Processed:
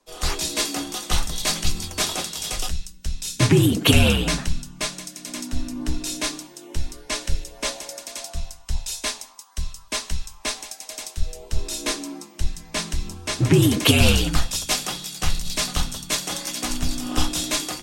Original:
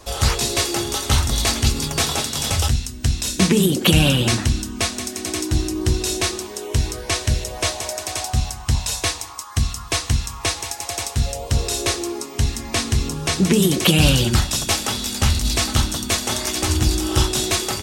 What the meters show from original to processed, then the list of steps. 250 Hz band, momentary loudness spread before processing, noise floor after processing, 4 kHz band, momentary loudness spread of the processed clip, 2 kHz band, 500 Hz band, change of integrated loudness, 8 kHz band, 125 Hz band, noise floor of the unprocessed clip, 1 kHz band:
-3.0 dB, 9 LU, -46 dBFS, -3.5 dB, 17 LU, -2.5 dB, -3.5 dB, -3.5 dB, -4.5 dB, -4.5 dB, -34 dBFS, -5.0 dB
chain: frequency shift -64 Hz; three-band expander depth 100%; gain -4.5 dB

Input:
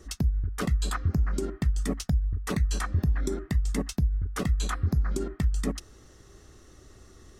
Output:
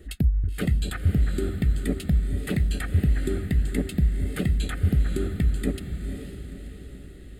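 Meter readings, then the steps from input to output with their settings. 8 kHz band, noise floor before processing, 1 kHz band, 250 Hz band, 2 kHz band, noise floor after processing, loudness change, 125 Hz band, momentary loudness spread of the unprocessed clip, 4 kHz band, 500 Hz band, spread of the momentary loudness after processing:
-3.5 dB, -54 dBFS, -6.0 dB, +4.5 dB, +2.0 dB, -43 dBFS, +3.0 dB, +4.0 dB, 3 LU, +0.5 dB, +2.5 dB, 15 LU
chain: fixed phaser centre 2500 Hz, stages 4; diffused feedback echo 0.508 s, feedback 51%, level -8 dB; gain +4 dB

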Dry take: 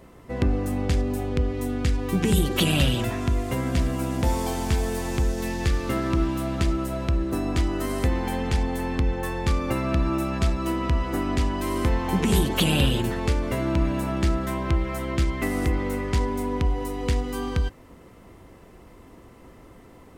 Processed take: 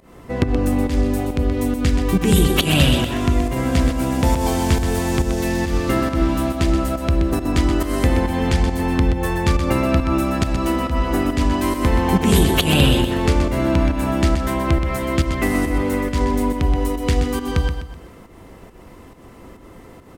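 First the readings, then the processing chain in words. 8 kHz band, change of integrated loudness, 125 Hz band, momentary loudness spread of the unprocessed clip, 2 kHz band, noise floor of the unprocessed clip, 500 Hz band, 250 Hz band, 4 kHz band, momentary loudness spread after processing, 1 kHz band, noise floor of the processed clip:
+6.0 dB, +6.0 dB, +5.5 dB, 5 LU, +6.5 dB, -49 dBFS, +6.5 dB, +7.0 dB, +6.0 dB, 5 LU, +6.5 dB, -43 dBFS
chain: pump 138 bpm, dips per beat 1, -17 dB, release 0.175 s; notches 60/120 Hz; on a send: feedback echo 0.126 s, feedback 39%, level -8 dB; on the sum: gain +6.5 dB

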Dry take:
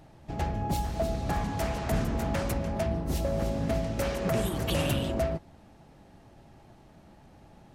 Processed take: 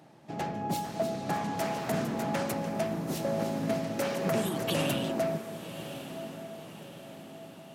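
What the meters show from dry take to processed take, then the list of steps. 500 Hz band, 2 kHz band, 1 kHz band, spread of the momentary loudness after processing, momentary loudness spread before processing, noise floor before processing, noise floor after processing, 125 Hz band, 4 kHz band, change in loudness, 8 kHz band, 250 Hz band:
0.0 dB, +0.5 dB, +1.0 dB, 16 LU, 3 LU, -55 dBFS, -49 dBFS, -6.0 dB, +0.5 dB, -2.0 dB, +0.5 dB, 0.0 dB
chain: HPF 150 Hz 24 dB/oct; diffused feedback echo 1.108 s, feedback 50%, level -11 dB

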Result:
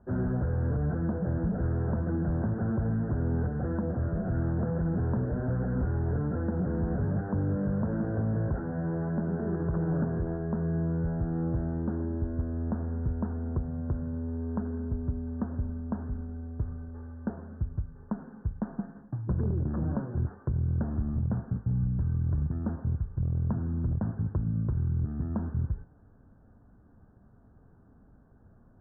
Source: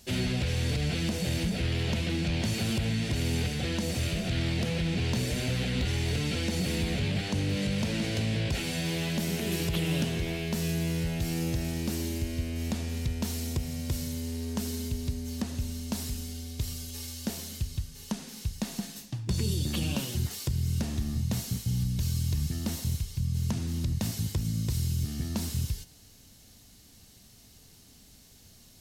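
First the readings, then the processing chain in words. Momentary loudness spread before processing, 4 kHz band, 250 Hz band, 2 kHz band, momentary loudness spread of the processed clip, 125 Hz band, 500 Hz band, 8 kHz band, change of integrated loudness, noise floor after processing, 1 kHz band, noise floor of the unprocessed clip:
6 LU, under -40 dB, +1.0 dB, -10.5 dB, 7 LU, +1.0 dB, +1.0 dB, under -40 dB, 0.0 dB, -58 dBFS, +1.0 dB, -55 dBFS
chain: one-sided fold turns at -23 dBFS; steep low-pass 1600 Hz 96 dB/oct; gain +1 dB

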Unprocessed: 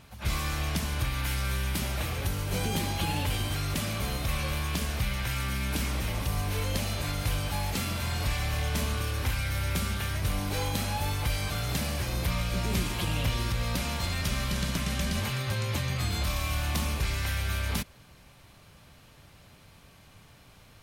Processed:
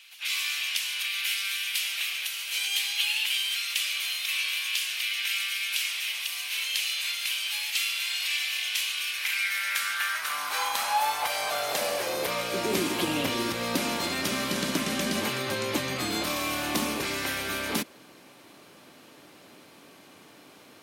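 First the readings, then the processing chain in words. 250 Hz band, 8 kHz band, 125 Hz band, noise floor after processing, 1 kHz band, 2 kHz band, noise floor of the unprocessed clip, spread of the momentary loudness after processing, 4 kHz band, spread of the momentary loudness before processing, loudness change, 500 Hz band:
+0.5 dB, +4.5 dB, -15.5 dB, -53 dBFS, +4.0 dB, +6.5 dB, -55 dBFS, 3 LU, +7.5 dB, 2 LU, +3.0 dB, +4.0 dB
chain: high-pass sweep 2700 Hz -> 300 Hz, 8.97–12.94; gain +4 dB

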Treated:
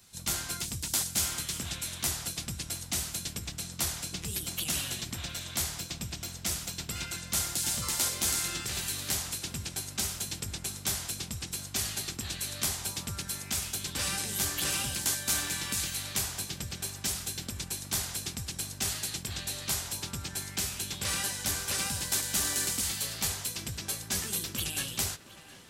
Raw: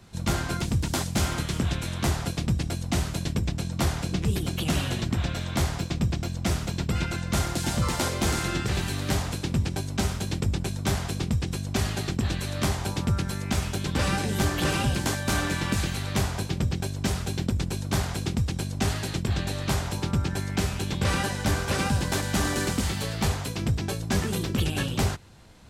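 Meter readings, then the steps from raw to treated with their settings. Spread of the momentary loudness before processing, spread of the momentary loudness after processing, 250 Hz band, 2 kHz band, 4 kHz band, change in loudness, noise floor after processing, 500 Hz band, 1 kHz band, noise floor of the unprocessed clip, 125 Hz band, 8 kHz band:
3 LU, 8 LU, -14.5 dB, -6.0 dB, -0.5 dB, -4.0 dB, -45 dBFS, -13.0 dB, -10.0 dB, -33 dBFS, -15.0 dB, +5.0 dB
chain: pre-emphasis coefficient 0.9; tape echo 0.713 s, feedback 88%, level -16 dB, low-pass 3500 Hz; gain +5 dB

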